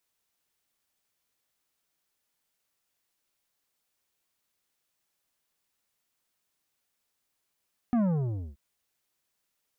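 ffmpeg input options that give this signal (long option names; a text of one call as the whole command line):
ffmpeg -f lavfi -i "aevalsrc='0.0708*clip((0.63-t)/0.57,0,1)*tanh(3.16*sin(2*PI*250*0.63/log(65/250)*(exp(log(65/250)*t/0.63)-1)))/tanh(3.16)':duration=0.63:sample_rate=44100" out.wav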